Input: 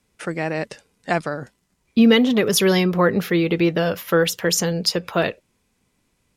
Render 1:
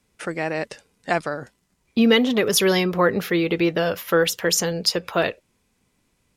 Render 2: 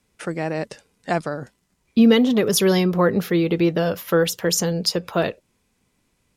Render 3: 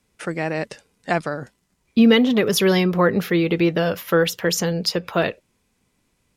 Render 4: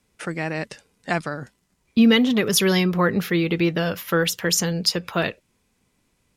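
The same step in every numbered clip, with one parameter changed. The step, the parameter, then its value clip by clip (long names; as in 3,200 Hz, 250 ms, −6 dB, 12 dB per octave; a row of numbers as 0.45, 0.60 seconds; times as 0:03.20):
dynamic equaliser, frequency: 170, 2,200, 8,400, 540 Hertz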